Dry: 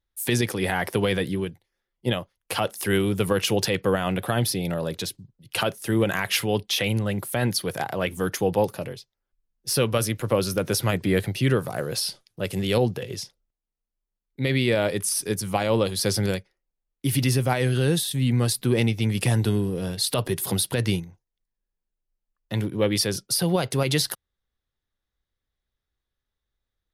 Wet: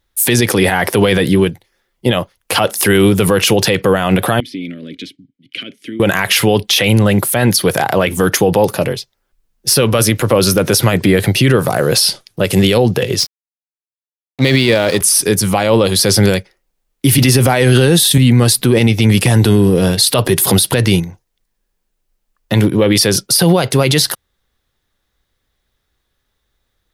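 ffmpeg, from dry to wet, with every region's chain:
ffmpeg -i in.wav -filter_complex "[0:a]asettb=1/sr,asplit=3[link_01][link_02][link_03];[link_01]atrim=end=4.404[link_04];[link_02]atrim=start=4.4:end=6,asetpts=PTS-STARTPTS,afade=type=in:duration=0.004:curve=qsin,afade=type=out:start_time=1.596:duration=0.004:curve=qsin,acompressor=threshold=-25dB:ratio=6:attack=3.2:release=140:knee=1:detection=peak,asplit=3[link_05][link_06][link_07];[link_05]bandpass=frequency=270:width_type=q:width=8,volume=0dB[link_08];[link_06]bandpass=frequency=2290:width_type=q:width=8,volume=-6dB[link_09];[link_07]bandpass=frequency=3010:width_type=q:width=8,volume=-9dB[link_10];[link_08][link_09][link_10]amix=inputs=3:normalize=0[link_11];[link_03]atrim=start=5.996[link_12];[link_04][link_11]acrossfade=duration=0.004:curve1=hsin:curve2=qsin[link_13];[link_13][link_12]acrossfade=duration=0.004:curve1=qsin:curve2=hsin,asettb=1/sr,asplit=3[link_14][link_15][link_16];[link_14]atrim=end=13.204[link_17];[link_15]atrim=start=13.2:end=15.01,asetpts=PTS-STARTPTS,afade=type=in:duration=0.004:curve=qsin,afade=type=out:start_time=1.806:duration=0.004:curve=qsin,highpass=frequency=74:width=0.5412,highpass=frequency=74:width=1.3066,equalizer=frequency=4700:width_type=o:width=0.53:gain=8.5,aeval=exprs='sgn(val(0))*max(abs(val(0))-0.0112,0)':channel_layout=same[link_18];[link_16]atrim=start=15.006[link_19];[link_17][link_18]acrossfade=duration=0.004:curve1=hsin:curve2=qsin[link_20];[link_20][link_19]acrossfade=duration=0.004:curve1=qsin:curve2=hsin,asettb=1/sr,asplit=3[link_21][link_22][link_23];[link_21]atrim=end=17.184[link_24];[link_22]atrim=start=17.18:end=18.18,asetpts=PTS-STARTPTS,afade=type=in:duration=0.004:curve=qsin,afade=type=out:start_time=0.996:duration=0.004:curve=qsin,highpass=110,acontrast=43[link_25];[link_23]atrim=start=18.176[link_26];[link_24][link_25]acrossfade=duration=0.004:curve1=hsin:curve2=qsin[link_27];[link_27][link_26]acrossfade=duration=0.004:curve1=qsin:curve2=hsin,lowshelf=frequency=120:gain=-4.5,alimiter=level_in=18.5dB:limit=-1dB:release=50:level=0:latency=1,volume=-1dB" out.wav

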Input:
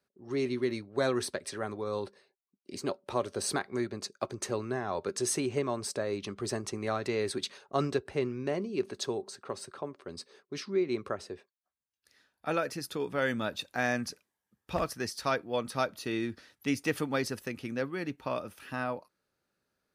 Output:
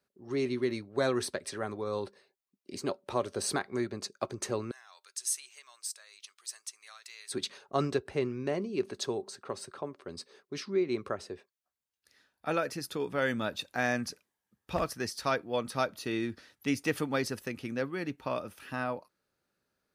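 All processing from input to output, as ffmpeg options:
ffmpeg -i in.wav -filter_complex "[0:a]asettb=1/sr,asplit=3[link_01][link_02][link_03];[link_01]atrim=end=4.714[link_04];[link_02]atrim=start=4.71:end=7.32,asetpts=PTS-STARTPTS,afade=type=in:duration=0.004:curve=qsin,afade=type=out:start_time=2.606:duration=0.004:curve=qsin,highpass=1100,aderivative[link_05];[link_03]atrim=start=7.316[link_06];[link_04][link_05]acrossfade=duration=0.004:curve1=hsin:curve2=qsin[link_07];[link_07][link_06]acrossfade=duration=0.004:curve1=qsin:curve2=hsin" out.wav

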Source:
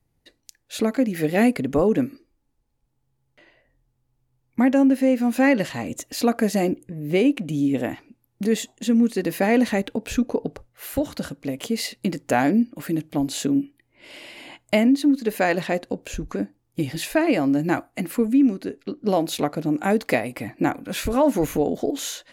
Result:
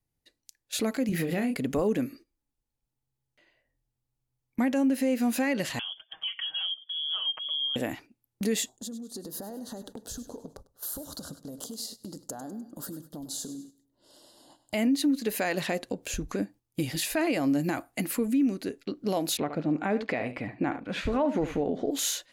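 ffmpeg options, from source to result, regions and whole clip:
ffmpeg -i in.wav -filter_complex "[0:a]asettb=1/sr,asplit=3[link_01][link_02][link_03];[link_01]atrim=end=1.094[link_04];[link_02]atrim=start=1.09:end=1.56,asetpts=PTS-STARTPTS,afade=type=in:duration=0.004:curve=qsin,afade=type=out:start_time=0.466:duration=0.004:curve=qsin,bass=frequency=250:gain=7,treble=frequency=4000:gain=-5,asplit=2[link_05][link_06];[link_06]adelay=29,volume=-6dB[link_07];[link_05][link_07]amix=inputs=2:normalize=0,atrim=end_sample=20727,acompressor=threshold=-20dB:ratio=12:attack=3.2:release=140:knee=1:detection=peak[link_08];[link_03]atrim=start=1.556[link_09];[link_04][link_08]acrossfade=duration=0.004:curve1=hsin:curve2=qsin[link_10];[link_10][link_09]acrossfade=duration=0.004:curve1=qsin:curve2=hsin,asettb=1/sr,asplit=3[link_11][link_12][link_13];[link_11]atrim=end=5.794[link_14];[link_12]atrim=start=5.79:end=7.76,asetpts=PTS-STARTPTS,afade=type=in:duration=0.004:curve=qsin,afade=type=out:start_time=1.966:duration=0.004:curve=qsin,acompressor=threshold=-37dB:ratio=2.5:attack=3.2:release=140:knee=1:detection=peak,aecho=1:1:6.3:0.57,atrim=end_sample=86877,lowpass=frequency=3000:width_type=q:width=0.5098,lowpass=frequency=3000:width_type=q:width=0.6013,lowpass=frequency=3000:width_type=q:width=0.9,lowpass=frequency=3000:width_type=q:width=2.563,afreqshift=-3500[link_15];[link_13]atrim=start=7.756[link_16];[link_14][link_15]acrossfade=duration=0.004:curve1=hsin:curve2=qsin[link_17];[link_17][link_16]acrossfade=duration=0.004:curve1=qsin:curve2=hsin,asettb=1/sr,asplit=3[link_18][link_19][link_20];[link_18]atrim=end=8.694[link_21];[link_19]atrim=start=8.69:end=14.74,asetpts=PTS-STARTPTS,afade=type=in:duration=0.004:curve=qsin,afade=type=out:start_time=6.046:duration=0.004:curve=qsin,acompressor=threshold=-33dB:ratio=8:attack=3.2:release=140:knee=1:detection=peak,asuperstop=centerf=2300:order=4:qfactor=0.88,aecho=1:1:101|202|303|404:0.211|0.0951|0.0428|0.0193,atrim=end_sample=266805[link_22];[link_20]atrim=start=14.736[link_23];[link_21][link_22]acrossfade=duration=0.004:curve1=hsin:curve2=qsin[link_24];[link_24][link_23]acrossfade=duration=0.004:curve1=qsin:curve2=hsin,asettb=1/sr,asplit=3[link_25][link_26][link_27];[link_25]atrim=end=19.374[link_28];[link_26]atrim=start=19.37:end=21.91,asetpts=PTS-STARTPTS,afade=type=in:duration=0.004:curve=qsin,afade=type=out:start_time=2.536:duration=0.004:curve=qsin,lowpass=2500,aecho=1:1:72:0.211,atrim=end_sample=112014[link_29];[link_27]atrim=start=21.906[link_30];[link_28][link_29]acrossfade=duration=0.004:curve1=hsin:curve2=qsin[link_31];[link_31][link_30]acrossfade=duration=0.004:curve1=qsin:curve2=hsin,agate=range=-9dB:threshold=-43dB:ratio=16:detection=peak,highshelf=frequency=2700:gain=8,alimiter=limit=-14.5dB:level=0:latency=1:release=85,volume=-4dB" out.wav

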